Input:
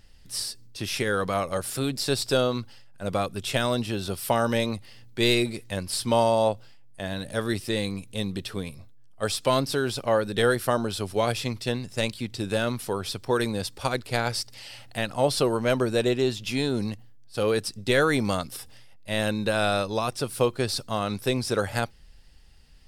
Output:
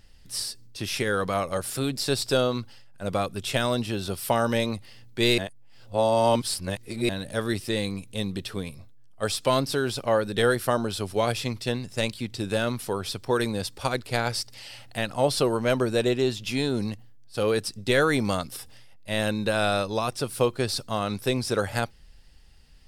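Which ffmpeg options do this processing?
-filter_complex "[0:a]asplit=3[a][b][c];[a]atrim=end=5.382[d];[b]atrim=start=5.378:end=7.092,asetpts=PTS-STARTPTS,areverse[e];[c]atrim=start=7.088[f];[d][e]acrossfade=d=0.004:c1=hsin:c2=hsin[g];[g][f]acrossfade=d=0.004:c1=hsin:c2=hsin"

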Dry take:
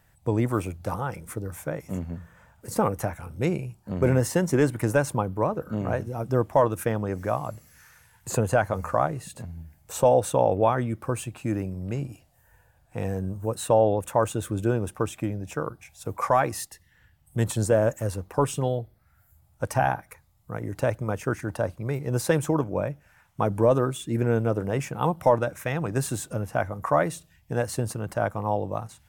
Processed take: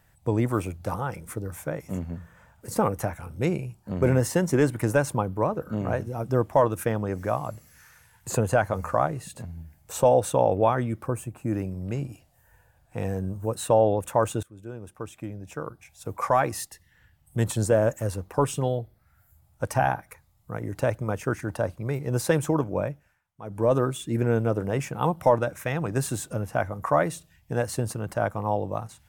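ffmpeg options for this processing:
-filter_complex "[0:a]asplit=3[a][b][c];[a]afade=t=out:st=11.06:d=0.02[d];[b]equalizer=f=3.7k:t=o:w=1.7:g=-14,afade=t=in:st=11.06:d=0.02,afade=t=out:st=11.51:d=0.02[e];[c]afade=t=in:st=11.51:d=0.02[f];[d][e][f]amix=inputs=3:normalize=0,asplit=4[g][h][i][j];[g]atrim=end=14.43,asetpts=PTS-STARTPTS,afade=t=out:st=14.426:d=0.004:c=hsin:silence=0.0630957[k];[h]atrim=start=14.43:end=23.2,asetpts=PTS-STARTPTS,afade=t=in:d=2.04:silence=0.0630957,afade=t=out:st=8.43:d=0.34:silence=0.11885[l];[i]atrim=start=23.2:end=23.42,asetpts=PTS-STARTPTS,volume=-18.5dB[m];[j]atrim=start=23.42,asetpts=PTS-STARTPTS,afade=t=in:d=0.34:silence=0.11885[n];[k][l][m][n]concat=n=4:v=0:a=1"

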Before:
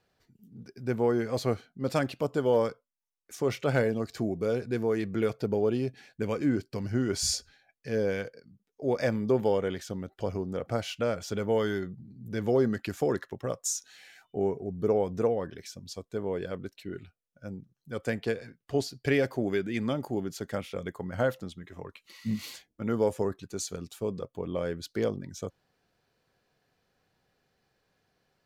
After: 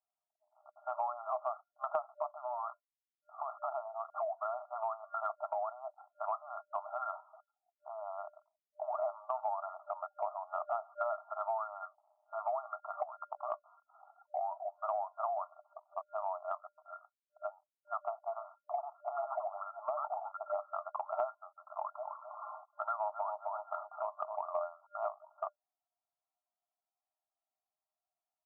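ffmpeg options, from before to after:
-filter_complex "[0:a]asettb=1/sr,asplit=3[a][b][c];[a]atrim=end=2.314[d];[b]atrim=start=2.31:end=4.05,asetpts=PTS-STARTPTS,afade=t=in:d=0.004:c=qsin,afade=t=out:st=1.736:d=0.004:c=qsin,acompressor=threshold=-34dB:ratio=16:attack=3.2:release=140:knee=1:detection=peak[e];[c]atrim=start=4.046[f];[d][e]acrossfade=d=0.004:c1=hsin:c2=qsin[g];[g][f]acrossfade=d=0.004:c1=qsin:c2=hsin,asettb=1/sr,asplit=3[h][i][j];[h]atrim=end=7.204[k];[i]atrim=start=7.2:end=8.94,asetpts=PTS-STARTPTS,afade=t=in:d=0.004:c=qsin,afade=t=out:st=1.736:d=0.004:c=qsin,acompressor=threshold=-40dB:ratio=2.5:attack=3.2:release=140:knee=1:detection=peak[l];[j]atrim=start=8.936[m];[k][l]acrossfade=d=0.004:c1=hsin:c2=qsin[n];[n][m]acrossfade=d=0.004:c1=qsin:c2=hsin,asplit=3[o][p][q];[o]afade=t=out:st=13.02:d=0.02[r];[p]acompressor=threshold=-38dB:ratio=16:attack=3.2:release=140:knee=1:detection=peak,afade=t=in:st=13.02:d=0.02,afade=t=out:st=13.51:d=0.02[s];[q]afade=t=in:st=13.51:d=0.02[t];[r][s][t]amix=inputs=3:normalize=0,asettb=1/sr,asplit=3[u][v][w];[u]atrim=end=18.174[x];[v]atrim=start=18.17:end=20.59,asetpts=PTS-STARTPTS,afade=t=in:d=0.004:c=qsin,afade=t=out:st=2.416:d=0.004:c=qsin,acrossover=split=1000[y][z];[z]adelay=90[aa];[y][aa]amix=inputs=2:normalize=0,atrim=end_sample=106722[ab];[w]atrim=start=20.586[ac];[x][ab]acrossfade=d=0.004:c1=hsin:c2=qsin[ad];[ad][ac]acrossfade=d=0.004:c1=qsin:c2=hsin,asplit=3[ae][af][ag];[ae]afade=t=out:st=21.81:d=0.02[ah];[af]asplit=2[ai][aj];[aj]adelay=261,lowpass=f=960:p=1,volume=-6dB,asplit=2[ak][al];[al]adelay=261,lowpass=f=960:p=1,volume=0.41,asplit=2[am][an];[an]adelay=261,lowpass=f=960:p=1,volume=0.41,asplit=2[ao][ap];[ap]adelay=261,lowpass=f=960:p=1,volume=0.41,asplit=2[aq][ar];[ar]adelay=261,lowpass=f=960:p=1,volume=0.41[as];[ai][ak][am][ao][aq][as]amix=inputs=6:normalize=0,afade=t=in:st=21.81:d=0.02,afade=t=out:st=24.54:d=0.02[at];[ag]afade=t=in:st=24.54:d=0.02[au];[ah][at][au]amix=inputs=3:normalize=0,anlmdn=0.00251,afftfilt=real='re*between(b*sr/4096,600,1400)':imag='im*between(b*sr/4096,600,1400)':win_size=4096:overlap=0.75,acompressor=threshold=-50dB:ratio=5,volume=15.5dB"

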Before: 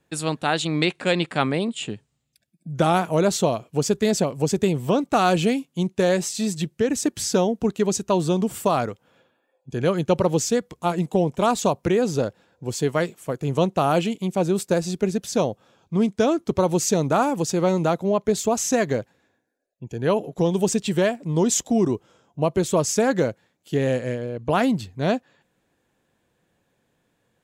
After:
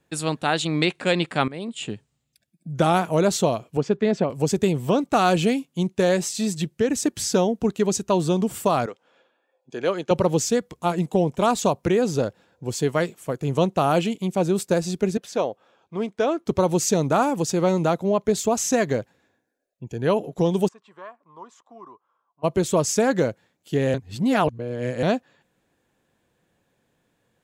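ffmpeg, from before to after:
-filter_complex "[0:a]asettb=1/sr,asplit=3[a][b][c];[a]atrim=end=3.774[d];[b]atrim=start=3.77:end=4.3,asetpts=PTS-STARTPTS,afade=t=in:d=0.004:c=qsin,afade=t=out:st=0.526:d=0.004:c=qsin,highpass=130,lowpass=2.5k[e];[c]atrim=start=4.296[f];[d][e]acrossfade=d=0.004:c1=hsin:c2=qsin[g];[g][f]acrossfade=d=0.004:c1=qsin:c2=hsin,asettb=1/sr,asplit=3[h][i][j];[h]atrim=end=8.864[k];[i]atrim=start=8.86:end=10.11,asetpts=PTS-STARTPTS,afade=t=in:d=0.004:c=qsin,afade=t=out:st=1.246:d=0.004:c=qsin,highpass=350,lowpass=6.7k[l];[j]atrim=start=10.106[m];[k][l]acrossfade=d=0.004:c1=hsin:c2=qsin[n];[n][m]acrossfade=d=0.004:c1=qsin:c2=hsin,asettb=1/sr,asplit=3[o][p][q];[o]atrim=end=15.174[r];[p]atrim=start=15.17:end=16.46,asetpts=PTS-STARTPTS,afade=t=in:d=0.004:c=qsin,afade=t=out:st=1.286:d=0.004:c=qsin,bass=f=250:g=-15,treble=f=4k:g=-10[s];[q]atrim=start=16.456[t];[r][s]acrossfade=d=0.004:c1=hsin:c2=qsin[u];[u][t]acrossfade=d=0.004:c1=qsin:c2=hsin,asplit=3[v][w][x];[v]afade=t=out:st=20.67:d=0.02[y];[w]bandpass=f=1.1k:t=q:w=8.2,afade=t=in:st=20.67:d=0.02,afade=t=out:st=22.43:d=0.02[z];[x]afade=t=in:st=22.43:d=0.02[aa];[y][z][aa]amix=inputs=3:normalize=0,asplit=4[ab][ac][ad][ae];[ab]atrim=end=1.48,asetpts=PTS-STARTPTS,afade=t=out:st=1.476:d=0.004:c=hsin:silence=0.125893[af];[ac]atrim=start=1.48:end=23.942,asetpts=PTS-STARTPTS,afade=t=in:d=0.42:silence=0.125893[ag];[ad]atrim=start=23.938:end=25.032,asetpts=PTS-STARTPTS,areverse[ah];[ae]atrim=start=25.028[ai];[af][ag]concat=n=2:v=0:a=1[aj];[aj][ah]acrossfade=d=0.004:c1=hsin:c2=hsin[ak];[ak][ai]acrossfade=d=0.004:c1=hsin:c2=hsin"

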